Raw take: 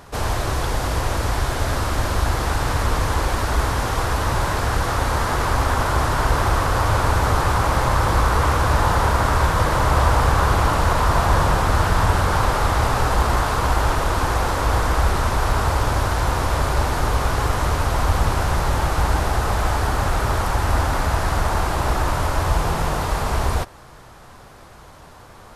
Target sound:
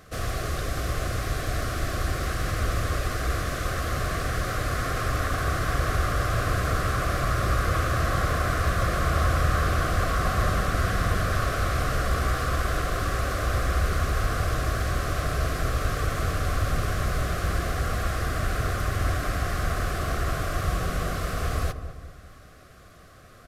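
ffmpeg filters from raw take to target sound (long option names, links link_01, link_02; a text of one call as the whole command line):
ffmpeg -i in.wav -filter_complex "[0:a]asuperstop=centerf=830:order=8:qfactor=3.1,asetrate=48000,aresample=44100,asplit=2[link_01][link_02];[link_02]adelay=203,lowpass=frequency=1000:poles=1,volume=-9.5dB,asplit=2[link_03][link_04];[link_04]adelay=203,lowpass=frequency=1000:poles=1,volume=0.5,asplit=2[link_05][link_06];[link_06]adelay=203,lowpass=frequency=1000:poles=1,volume=0.5,asplit=2[link_07][link_08];[link_08]adelay=203,lowpass=frequency=1000:poles=1,volume=0.5,asplit=2[link_09][link_10];[link_10]adelay=203,lowpass=frequency=1000:poles=1,volume=0.5,asplit=2[link_11][link_12];[link_12]adelay=203,lowpass=frequency=1000:poles=1,volume=0.5[link_13];[link_01][link_03][link_05][link_07][link_09][link_11][link_13]amix=inputs=7:normalize=0,volume=-6.5dB" out.wav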